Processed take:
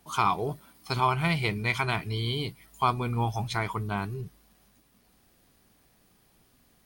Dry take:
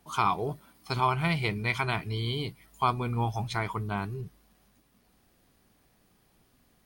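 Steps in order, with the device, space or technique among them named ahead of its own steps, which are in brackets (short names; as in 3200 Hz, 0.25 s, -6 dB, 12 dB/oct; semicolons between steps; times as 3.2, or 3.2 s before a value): exciter from parts (in parallel at -6 dB: HPF 4100 Hz 6 dB/oct + soft clip -37 dBFS, distortion -7 dB); on the sum: gain +1 dB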